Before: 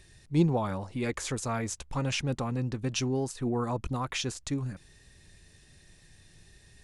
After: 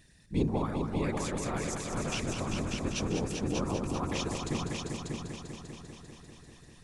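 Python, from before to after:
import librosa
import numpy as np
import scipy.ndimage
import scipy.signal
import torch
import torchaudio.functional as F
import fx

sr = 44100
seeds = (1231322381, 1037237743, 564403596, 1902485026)

y = fx.whisperise(x, sr, seeds[0])
y = fx.echo_heads(y, sr, ms=197, heads='all three', feedback_pct=57, wet_db=-7.0)
y = y * librosa.db_to_amplitude(-4.5)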